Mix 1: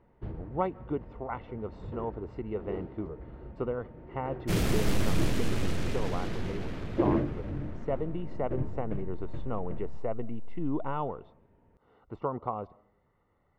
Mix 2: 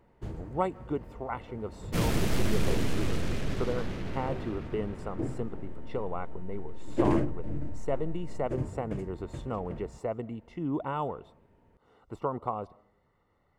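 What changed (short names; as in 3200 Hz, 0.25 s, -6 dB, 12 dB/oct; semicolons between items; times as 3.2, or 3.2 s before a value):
speech: remove air absorption 240 m; first sound: remove air absorption 350 m; second sound: entry -2.55 s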